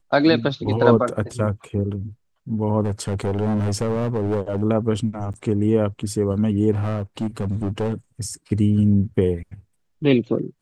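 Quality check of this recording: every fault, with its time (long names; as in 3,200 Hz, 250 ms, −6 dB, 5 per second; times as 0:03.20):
0:02.84–0:04.63: clipping −18 dBFS
0:05.33–0:05.34: drop-out 9.1 ms
0:06.71–0:07.94: clipping −19 dBFS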